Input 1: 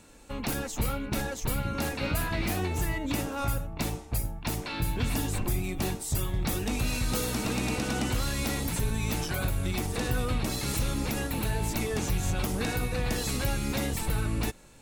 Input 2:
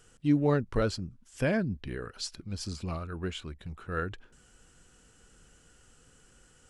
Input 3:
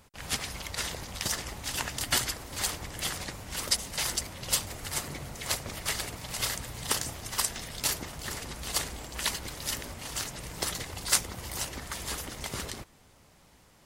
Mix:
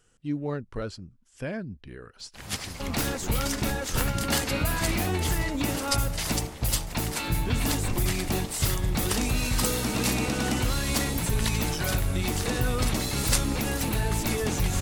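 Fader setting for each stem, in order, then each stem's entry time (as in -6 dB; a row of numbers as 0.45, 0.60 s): +2.5, -5.5, -1.5 dB; 2.50, 0.00, 2.20 s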